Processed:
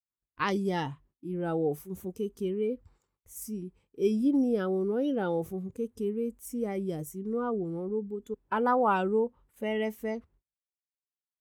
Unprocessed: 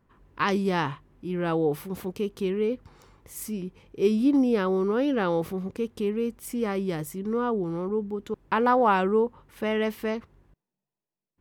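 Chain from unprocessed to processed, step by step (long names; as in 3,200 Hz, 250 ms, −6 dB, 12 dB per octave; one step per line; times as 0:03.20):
noise gate −52 dBFS, range −30 dB
noise reduction from a noise print of the clip's start 13 dB
level −4 dB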